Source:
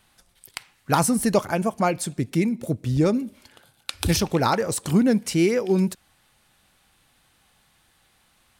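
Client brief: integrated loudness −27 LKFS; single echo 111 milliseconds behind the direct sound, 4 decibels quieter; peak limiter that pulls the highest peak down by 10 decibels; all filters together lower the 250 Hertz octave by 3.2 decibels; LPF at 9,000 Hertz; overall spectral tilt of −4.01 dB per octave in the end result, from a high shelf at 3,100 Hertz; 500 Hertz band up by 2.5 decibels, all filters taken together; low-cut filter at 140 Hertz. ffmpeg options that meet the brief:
ffmpeg -i in.wav -af "highpass=140,lowpass=9000,equalizer=frequency=250:width_type=o:gain=-5,equalizer=frequency=500:width_type=o:gain=4.5,highshelf=frequency=3100:gain=8,alimiter=limit=-11dB:level=0:latency=1,aecho=1:1:111:0.631,volume=-5dB" out.wav

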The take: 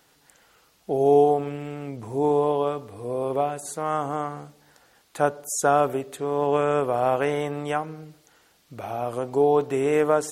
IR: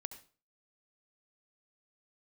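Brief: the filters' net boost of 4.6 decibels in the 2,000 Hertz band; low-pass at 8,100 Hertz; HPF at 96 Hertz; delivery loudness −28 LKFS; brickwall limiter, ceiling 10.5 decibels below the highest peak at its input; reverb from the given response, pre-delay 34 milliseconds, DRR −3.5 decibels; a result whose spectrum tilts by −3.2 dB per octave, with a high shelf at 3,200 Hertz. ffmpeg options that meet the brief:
-filter_complex "[0:a]highpass=96,lowpass=8100,equalizer=frequency=2000:width_type=o:gain=9,highshelf=frequency=3200:gain=-8,alimiter=limit=-16dB:level=0:latency=1,asplit=2[link_01][link_02];[1:a]atrim=start_sample=2205,adelay=34[link_03];[link_02][link_03]afir=irnorm=-1:irlink=0,volume=6.5dB[link_04];[link_01][link_04]amix=inputs=2:normalize=0,volume=-5.5dB"

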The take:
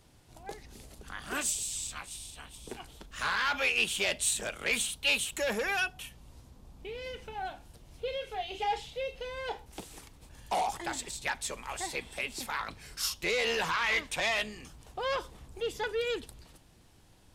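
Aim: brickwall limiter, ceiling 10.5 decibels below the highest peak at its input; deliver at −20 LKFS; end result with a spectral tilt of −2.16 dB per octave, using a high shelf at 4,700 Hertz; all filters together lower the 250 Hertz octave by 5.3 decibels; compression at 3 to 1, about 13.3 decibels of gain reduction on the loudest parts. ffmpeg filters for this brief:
ffmpeg -i in.wav -af "equalizer=frequency=250:width_type=o:gain=-7.5,highshelf=frequency=4700:gain=-7.5,acompressor=threshold=-45dB:ratio=3,volume=29.5dB,alimiter=limit=-10dB:level=0:latency=1" out.wav

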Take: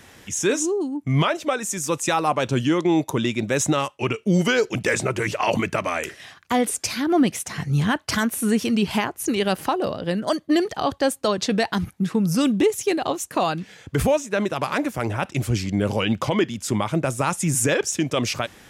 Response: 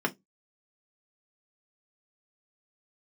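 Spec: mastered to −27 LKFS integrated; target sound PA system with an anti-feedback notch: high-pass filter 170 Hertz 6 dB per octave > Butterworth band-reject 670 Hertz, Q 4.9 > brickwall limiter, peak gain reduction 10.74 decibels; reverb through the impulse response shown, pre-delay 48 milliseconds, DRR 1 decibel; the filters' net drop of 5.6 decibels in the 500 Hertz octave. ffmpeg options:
-filter_complex "[0:a]equalizer=frequency=500:width_type=o:gain=-5.5,asplit=2[link_01][link_02];[1:a]atrim=start_sample=2205,adelay=48[link_03];[link_02][link_03]afir=irnorm=-1:irlink=0,volume=-10.5dB[link_04];[link_01][link_04]amix=inputs=2:normalize=0,highpass=frequency=170:poles=1,asuperstop=centerf=670:order=8:qfactor=4.9,alimiter=limit=-18dB:level=0:latency=1"

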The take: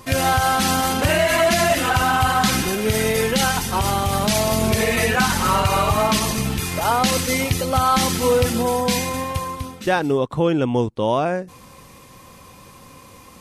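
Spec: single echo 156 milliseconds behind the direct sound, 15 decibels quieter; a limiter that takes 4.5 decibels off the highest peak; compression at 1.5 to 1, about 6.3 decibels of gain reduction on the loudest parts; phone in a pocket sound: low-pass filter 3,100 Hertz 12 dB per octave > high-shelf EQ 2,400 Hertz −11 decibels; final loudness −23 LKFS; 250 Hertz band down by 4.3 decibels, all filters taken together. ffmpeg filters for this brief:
ffmpeg -i in.wav -af "equalizer=frequency=250:width_type=o:gain=-5.5,acompressor=threshold=-32dB:ratio=1.5,alimiter=limit=-17dB:level=0:latency=1,lowpass=3100,highshelf=frequency=2400:gain=-11,aecho=1:1:156:0.178,volume=6dB" out.wav

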